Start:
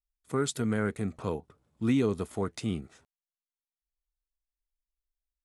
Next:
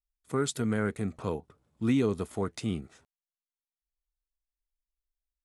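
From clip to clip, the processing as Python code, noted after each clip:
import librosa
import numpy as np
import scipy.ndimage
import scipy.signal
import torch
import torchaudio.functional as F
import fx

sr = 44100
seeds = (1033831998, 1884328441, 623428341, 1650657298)

y = x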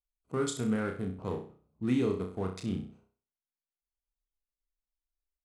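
y = fx.wiener(x, sr, points=25)
y = fx.room_flutter(y, sr, wall_m=5.5, rt60_s=0.41)
y = F.gain(torch.from_numpy(y), -3.5).numpy()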